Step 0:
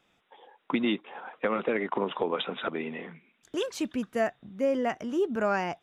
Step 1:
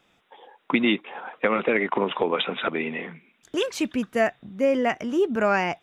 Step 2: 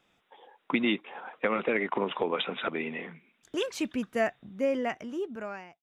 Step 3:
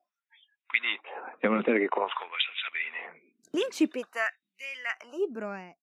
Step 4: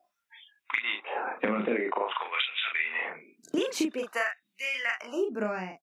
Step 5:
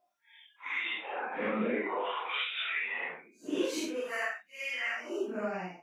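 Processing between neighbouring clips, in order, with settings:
dynamic bell 2.3 kHz, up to +6 dB, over -49 dBFS, Q 2.2; trim +5 dB
fade out at the end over 1.26 s; trim -5.5 dB
LFO high-pass sine 0.49 Hz 200–2600 Hz; spectral noise reduction 28 dB
compression 6:1, threshold -34 dBFS, peak gain reduction 14 dB; doubling 38 ms -4 dB; trim +7 dB
phase randomisation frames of 200 ms; trim -3.5 dB

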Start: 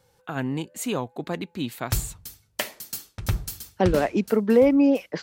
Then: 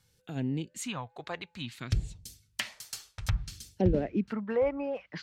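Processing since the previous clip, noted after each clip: low-pass that closes with the level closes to 1.6 kHz, closed at -20 dBFS; phase shifter stages 2, 0.58 Hz, lowest notch 230–1200 Hz; trim -3 dB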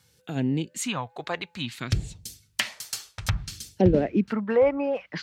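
high-pass 110 Hz 6 dB/octave; trim +7.5 dB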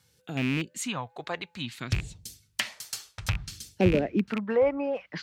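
rattle on loud lows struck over -26 dBFS, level -18 dBFS; trim -3 dB

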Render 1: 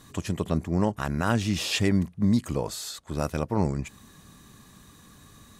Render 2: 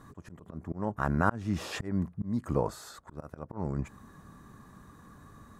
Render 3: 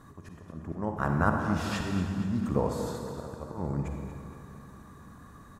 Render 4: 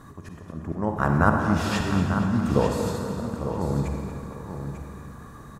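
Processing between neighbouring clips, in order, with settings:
slow attack 338 ms; resonant high shelf 2 kHz -11.5 dB, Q 1.5
feedback delay 234 ms, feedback 56%, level -12 dB; on a send at -3 dB: reverberation RT60 2.3 s, pre-delay 38 ms
feedback delay 894 ms, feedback 16%, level -9 dB; trim +6 dB

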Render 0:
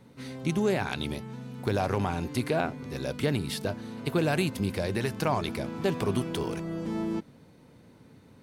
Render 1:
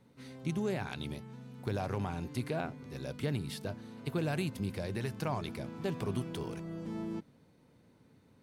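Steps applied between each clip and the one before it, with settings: dynamic bell 130 Hz, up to +5 dB, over -40 dBFS, Q 1.2; trim -9 dB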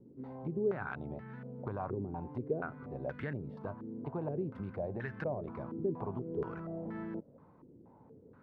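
compression 2:1, threshold -45 dBFS, peak gain reduction 9 dB; step-sequenced low-pass 4.2 Hz 360–1700 Hz; trim +2 dB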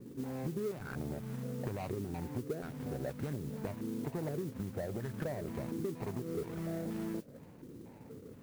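median filter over 41 samples; modulation noise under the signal 20 dB; compression 6:1, threshold -43 dBFS, peak gain reduction 14 dB; trim +8 dB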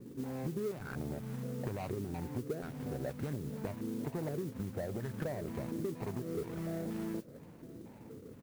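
delay 956 ms -21.5 dB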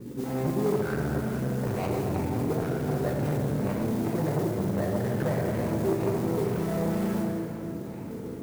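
plate-style reverb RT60 3.1 s, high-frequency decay 0.55×, DRR -2.5 dB; transformer saturation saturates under 430 Hz; trim +8.5 dB

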